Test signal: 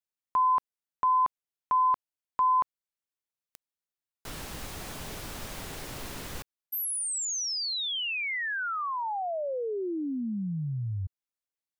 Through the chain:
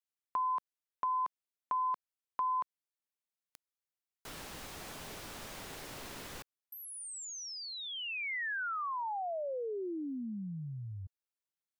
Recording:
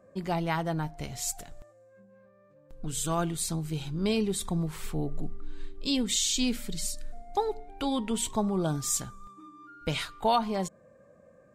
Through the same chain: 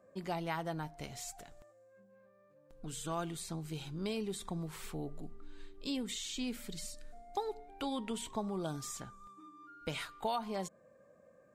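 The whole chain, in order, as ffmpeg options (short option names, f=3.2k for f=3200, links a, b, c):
-filter_complex "[0:a]acrossover=split=2700|7200[a][b][c];[a]acompressor=threshold=-27dB:ratio=4[d];[b]acompressor=threshold=-45dB:ratio=4[e];[c]acompressor=threshold=-47dB:ratio=4[f];[d][e][f]amix=inputs=3:normalize=0,lowshelf=f=160:g=-8.5,volume=-4.5dB"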